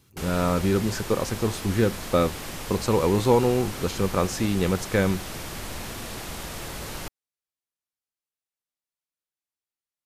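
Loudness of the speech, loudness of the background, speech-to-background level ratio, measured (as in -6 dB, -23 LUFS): -24.5 LUFS, -35.0 LUFS, 10.5 dB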